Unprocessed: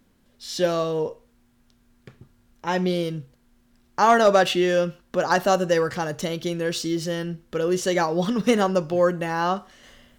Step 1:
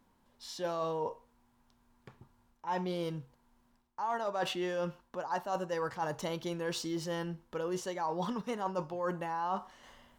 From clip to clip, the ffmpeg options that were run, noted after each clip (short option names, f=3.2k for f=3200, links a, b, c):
-af "equalizer=f=930:t=o:w=0.63:g=14.5,areverse,acompressor=threshold=-22dB:ratio=12,areverse,volume=-9dB"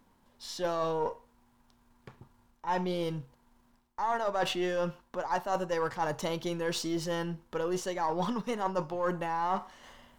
-af "aeval=exprs='if(lt(val(0),0),0.708*val(0),val(0))':c=same,volume=5dB"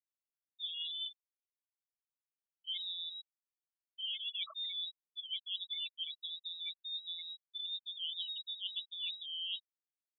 -af "lowpass=f=3.4k:t=q:w=0.5098,lowpass=f=3.4k:t=q:w=0.6013,lowpass=f=3.4k:t=q:w=0.9,lowpass=f=3.4k:t=q:w=2.563,afreqshift=-4000,afftfilt=real='re*gte(hypot(re,im),0.1)':imag='im*gte(hypot(re,im),0.1)':win_size=1024:overlap=0.75,volume=-9dB"